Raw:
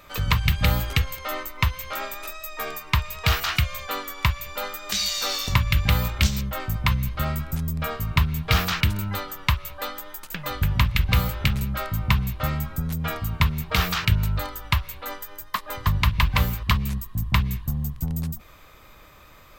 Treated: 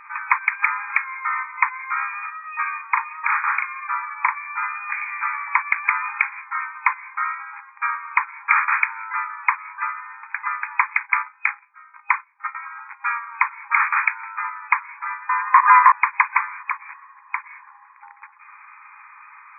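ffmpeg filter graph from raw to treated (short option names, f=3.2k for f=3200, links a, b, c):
-filter_complex "[0:a]asettb=1/sr,asplit=3[a][b][c];[a]atrim=end=2.814[d];[b]atrim=start=2.81:end=4.37,asetpts=PTS-STARTPTS,afade=t=in:d=0.004:c=qsin,afade=t=out:st=1.556:d=0.004:c=qsin,lowpass=f=1.4k:p=1,asplit=2[e][f];[f]adelay=38,volume=-4dB[g];[e][g]amix=inputs=2:normalize=0,atrim=end_sample=68796[h];[c]atrim=start=4.366[i];[d][h]acrossfade=d=0.004:c1=hsin:c2=qsin[j];[j][i]acrossfade=d=0.004:c1=qsin:c2=hsin,asettb=1/sr,asplit=3[k][l][m];[k]atrim=end=11.004[n];[l]atrim=start=11:end=12.55,asetpts=PTS-STARTPTS,afade=t=in:d=0.004:c=qsin,afade=t=out:st=1.546:d=0.004:c=qsin,agate=range=-23dB:threshold=-23dB:ratio=16:release=100:detection=peak,asplit=2[o][p];[p]adelay=35,volume=-13.5dB[q];[o][q]amix=inputs=2:normalize=0,atrim=end_sample=68355[r];[m]atrim=start=12.546[s];[n][r]acrossfade=d=0.004:c1=hsin:c2=qsin[t];[t][s]acrossfade=d=0.004:c1=qsin:c2=hsin,asettb=1/sr,asplit=3[u][v][w];[u]atrim=end=15.294[x];[v]atrim=start=15.29:end=15.92,asetpts=PTS-STARTPTS,afade=t=in:d=0.004:c=qsin,afade=t=out:st=0.626:d=0.004:c=qsin,highpass=f=990:t=q:w=9.8,equalizer=f=1.9k:t=o:w=1.7:g=14.5[y];[w]atrim=start=15.916[z];[x][y]acrossfade=d=0.004:c1=hsin:c2=qsin[aa];[aa][z]acrossfade=d=0.004:c1=qsin:c2=hsin,asettb=1/sr,asplit=3[ab][ac][ad];[ab]atrim=end=16.644[ae];[ac]atrim=start=16.64:end=17.86,asetpts=PTS-STARTPTS,afade=t=in:d=0.004:c=qsin,afade=t=out:st=1.216:d=0.004:c=qsin,bandreject=f=2.8k:w=5.5,acompressor=threshold=-23dB:ratio=5:attack=3.2:release=140:knee=1:detection=peak[af];[ad]atrim=start=17.856[ag];[ae][af]acrossfade=d=0.004:c1=hsin:c2=qsin[ah];[ah][ag]acrossfade=d=0.004:c1=qsin:c2=hsin,afftfilt=real='re*between(b*sr/4096,810,2500)':imag='im*between(b*sr/4096,810,2500)':win_size=4096:overlap=0.75,alimiter=level_in=10.5dB:limit=-1dB:release=50:level=0:latency=1,volume=-1dB"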